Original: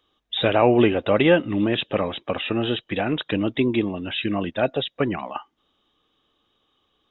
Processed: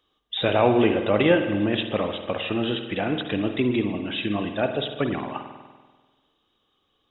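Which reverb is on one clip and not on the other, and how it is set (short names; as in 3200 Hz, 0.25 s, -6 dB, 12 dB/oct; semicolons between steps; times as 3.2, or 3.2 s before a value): spring tank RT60 1.4 s, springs 48 ms, chirp 40 ms, DRR 6 dB; gain -2.5 dB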